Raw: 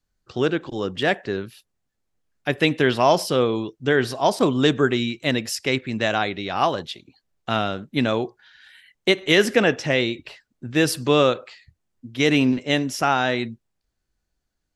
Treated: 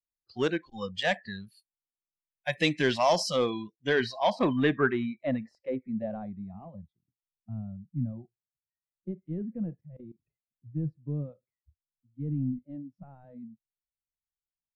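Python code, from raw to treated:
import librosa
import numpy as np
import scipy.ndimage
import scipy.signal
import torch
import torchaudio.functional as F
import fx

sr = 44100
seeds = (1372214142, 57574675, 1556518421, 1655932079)

p1 = fx.noise_reduce_blind(x, sr, reduce_db=24)
p2 = 10.0 ** (-17.5 / 20.0) * (np.abs((p1 / 10.0 ** (-17.5 / 20.0) + 3.0) % 4.0 - 2.0) - 1.0)
p3 = p1 + (p2 * librosa.db_to_amplitude(-12.0))
p4 = fx.filter_sweep_lowpass(p3, sr, from_hz=6600.0, to_hz=150.0, start_s=3.6, end_s=6.89, q=1.6)
p5 = fx.level_steps(p4, sr, step_db=19, at=(9.81, 10.23))
y = p5 * librosa.db_to_amplitude(-7.0)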